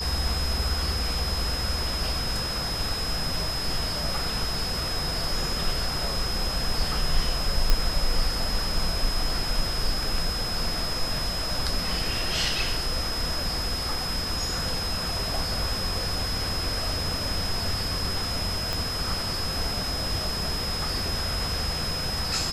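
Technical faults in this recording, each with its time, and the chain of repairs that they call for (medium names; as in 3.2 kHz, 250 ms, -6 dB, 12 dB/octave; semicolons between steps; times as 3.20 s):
whine 5.1 kHz -30 dBFS
7.70 s: pop -7 dBFS
18.73 s: pop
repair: de-click; band-stop 5.1 kHz, Q 30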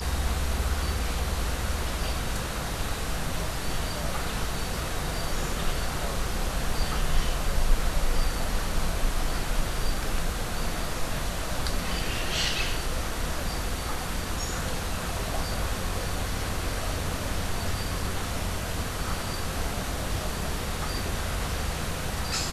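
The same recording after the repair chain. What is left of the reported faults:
18.73 s: pop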